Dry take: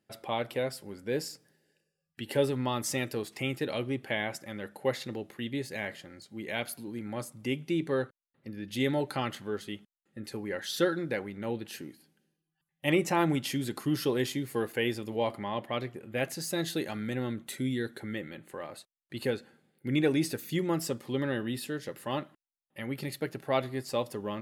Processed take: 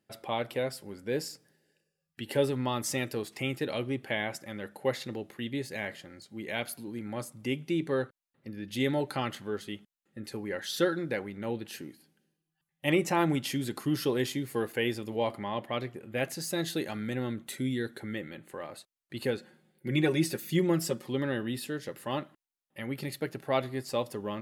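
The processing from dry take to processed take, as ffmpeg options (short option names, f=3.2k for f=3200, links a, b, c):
-filter_complex "[0:a]asettb=1/sr,asplit=3[a][b][c];[a]atrim=end=19.374[d];[b]atrim=start=19.37:end=21.07,asetpts=PTS-STARTPTS,afade=t=in:d=0.004:c=qsin,afade=t=out:st=1.696:d=0.004:c=qsin,aecho=1:1:5.5:0.65,atrim=end_sample=74970[e];[c]atrim=start=21.066[f];[d][e]acrossfade=d=0.004:c1=hsin:c2=qsin[g];[g][f]acrossfade=d=0.004:c1=qsin:c2=hsin"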